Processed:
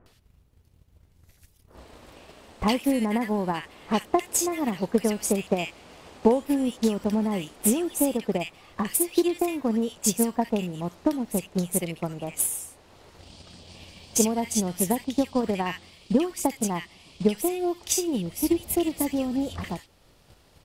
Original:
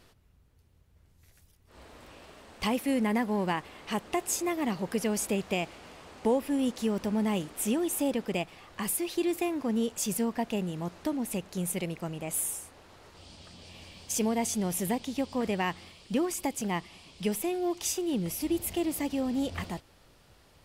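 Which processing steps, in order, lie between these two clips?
bands offset in time lows, highs 60 ms, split 1.5 kHz; transient shaper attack +8 dB, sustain -2 dB; trim +2 dB

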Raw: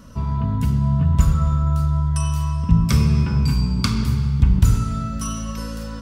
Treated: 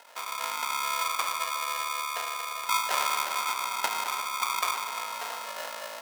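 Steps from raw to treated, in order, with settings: sample-and-hold 38×; high-pass 650 Hz 24 dB/octave; filtered feedback delay 350 ms, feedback 68%, level -12 dB; trim +1.5 dB

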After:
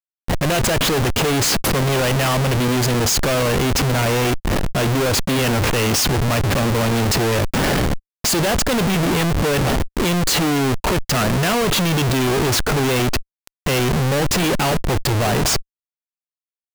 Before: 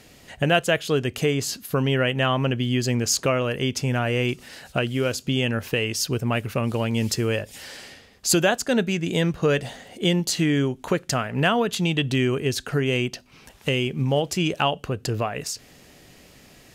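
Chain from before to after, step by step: Schmitt trigger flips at -35.5 dBFS; waveshaping leveller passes 5; trim +1.5 dB

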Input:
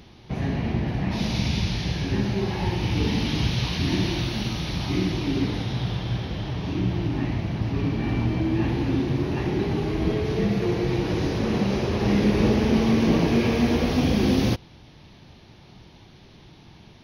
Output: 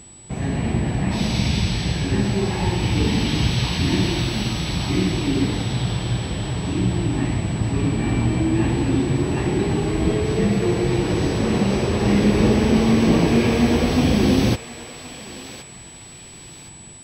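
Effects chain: level rider gain up to 4 dB; whistle 7.9 kHz -43 dBFS; thinning echo 1069 ms, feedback 44%, high-pass 1 kHz, level -11 dB

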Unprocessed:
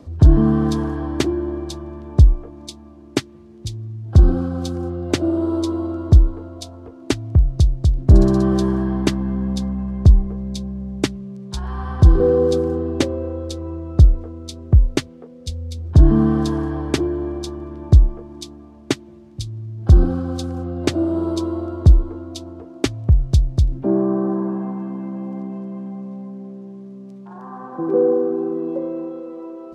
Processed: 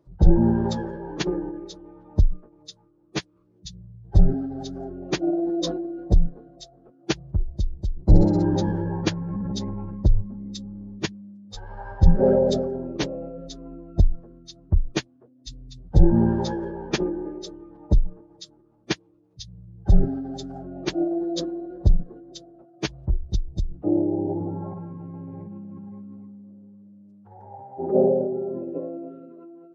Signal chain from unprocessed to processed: expander on every frequency bin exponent 1.5; formant-preserving pitch shift -11.5 st; trim -1 dB

